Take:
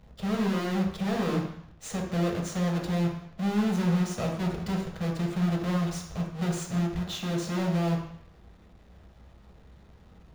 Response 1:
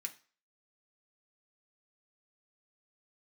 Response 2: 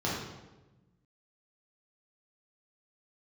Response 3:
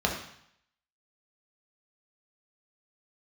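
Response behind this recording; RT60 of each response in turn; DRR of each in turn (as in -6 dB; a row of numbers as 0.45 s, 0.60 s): 3; 0.40 s, 1.1 s, 0.70 s; 2.5 dB, -6.5 dB, -0.5 dB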